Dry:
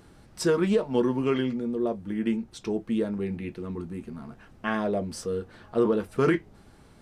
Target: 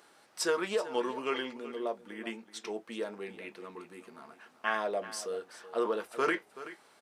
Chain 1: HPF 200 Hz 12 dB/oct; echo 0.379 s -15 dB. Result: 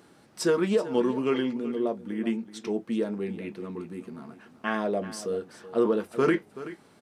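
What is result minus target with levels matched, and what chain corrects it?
250 Hz band +6.5 dB
HPF 630 Hz 12 dB/oct; echo 0.379 s -15 dB

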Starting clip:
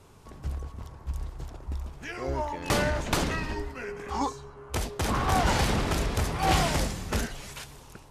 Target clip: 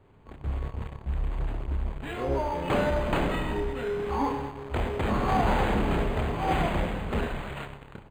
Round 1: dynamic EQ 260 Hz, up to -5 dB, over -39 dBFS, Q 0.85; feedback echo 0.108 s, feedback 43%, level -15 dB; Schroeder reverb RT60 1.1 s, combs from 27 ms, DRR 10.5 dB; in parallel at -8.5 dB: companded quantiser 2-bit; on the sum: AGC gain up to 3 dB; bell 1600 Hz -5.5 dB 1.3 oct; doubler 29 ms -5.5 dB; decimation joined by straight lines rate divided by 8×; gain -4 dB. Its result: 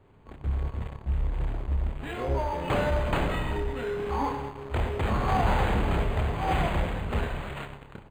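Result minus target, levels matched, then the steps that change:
250 Hz band -2.5 dB
change: dynamic EQ 87 Hz, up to -5 dB, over -39 dBFS, Q 0.85

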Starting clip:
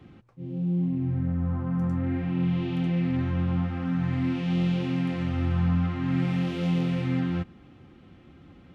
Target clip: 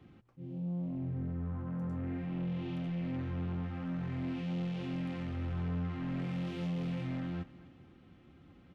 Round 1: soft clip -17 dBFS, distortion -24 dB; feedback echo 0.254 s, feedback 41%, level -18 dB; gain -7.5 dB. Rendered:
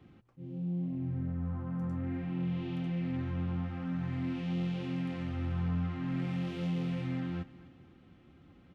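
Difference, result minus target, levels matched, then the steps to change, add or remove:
soft clip: distortion -10 dB
change: soft clip -24 dBFS, distortion -15 dB

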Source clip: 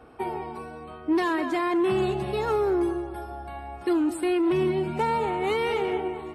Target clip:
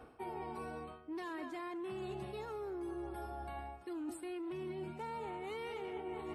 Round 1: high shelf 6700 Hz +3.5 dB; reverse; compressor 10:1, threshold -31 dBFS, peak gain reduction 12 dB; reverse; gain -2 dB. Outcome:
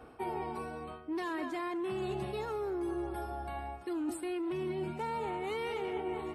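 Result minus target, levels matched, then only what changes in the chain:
compressor: peak gain reduction -7 dB
change: compressor 10:1, threshold -38.5 dBFS, peak gain reduction 18.5 dB

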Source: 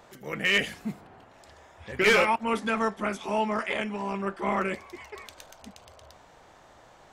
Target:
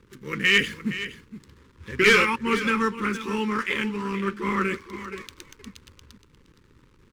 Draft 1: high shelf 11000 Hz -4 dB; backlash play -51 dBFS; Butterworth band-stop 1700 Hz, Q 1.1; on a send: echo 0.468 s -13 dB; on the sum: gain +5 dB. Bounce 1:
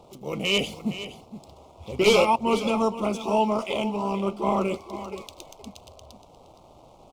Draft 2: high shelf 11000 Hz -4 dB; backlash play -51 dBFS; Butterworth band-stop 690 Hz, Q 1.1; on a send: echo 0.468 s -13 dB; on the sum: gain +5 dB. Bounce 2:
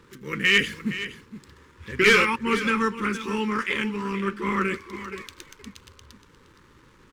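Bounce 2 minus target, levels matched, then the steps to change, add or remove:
backlash: distortion -6 dB
change: backlash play -44.5 dBFS

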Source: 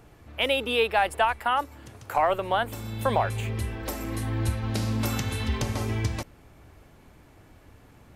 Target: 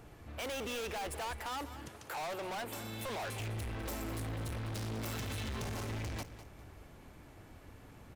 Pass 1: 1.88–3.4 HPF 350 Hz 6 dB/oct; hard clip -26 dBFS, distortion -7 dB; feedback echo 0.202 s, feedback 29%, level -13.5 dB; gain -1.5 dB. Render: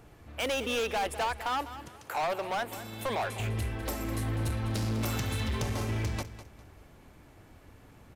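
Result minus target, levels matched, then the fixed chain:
hard clip: distortion -5 dB
1.88–3.4 HPF 350 Hz 6 dB/oct; hard clip -36.5 dBFS, distortion -2 dB; feedback echo 0.202 s, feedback 29%, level -13.5 dB; gain -1.5 dB

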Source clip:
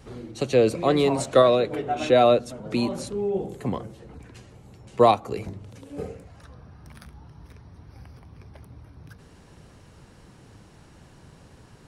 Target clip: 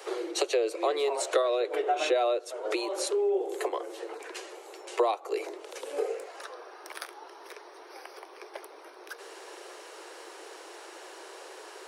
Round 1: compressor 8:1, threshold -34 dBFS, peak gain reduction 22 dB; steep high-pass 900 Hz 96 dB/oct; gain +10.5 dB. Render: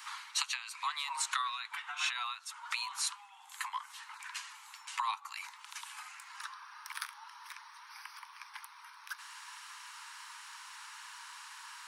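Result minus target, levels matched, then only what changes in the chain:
1000 Hz band +4.5 dB
change: steep high-pass 340 Hz 96 dB/oct

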